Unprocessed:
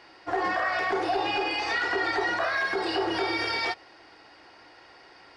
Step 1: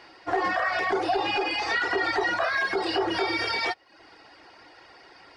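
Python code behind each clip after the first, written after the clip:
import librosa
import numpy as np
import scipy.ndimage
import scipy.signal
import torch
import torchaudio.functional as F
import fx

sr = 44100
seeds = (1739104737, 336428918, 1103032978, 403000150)

y = fx.dereverb_blind(x, sr, rt60_s=0.57)
y = F.gain(torch.from_numpy(y), 2.5).numpy()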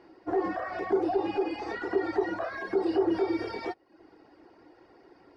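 y = fx.curve_eq(x, sr, hz=(120.0, 340.0, 580.0, 3300.0, 6200.0), db=(0, 7, -2, -16, -14))
y = F.gain(torch.from_numpy(y), -2.5).numpy()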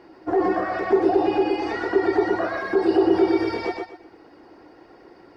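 y = fx.echo_feedback(x, sr, ms=122, feedback_pct=27, wet_db=-4)
y = F.gain(torch.from_numpy(y), 6.5).numpy()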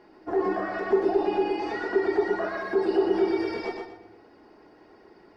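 y = fx.room_shoebox(x, sr, seeds[0], volume_m3=3600.0, walls='furnished', distance_m=1.4)
y = F.gain(torch.from_numpy(y), -5.5).numpy()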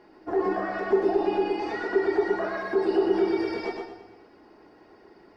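y = fx.echo_feedback(x, sr, ms=107, feedback_pct=57, wet_db=-15.0)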